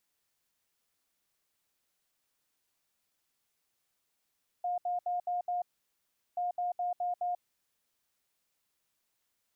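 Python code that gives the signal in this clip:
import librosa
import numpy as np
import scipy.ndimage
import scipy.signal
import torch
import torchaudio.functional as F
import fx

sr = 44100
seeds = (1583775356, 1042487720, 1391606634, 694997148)

y = fx.beep_pattern(sr, wave='sine', hz=712.0, on_s=0.14, off_s=0.07, beeps=5, pause_s=0.75, groups=2, level_db=-29.5)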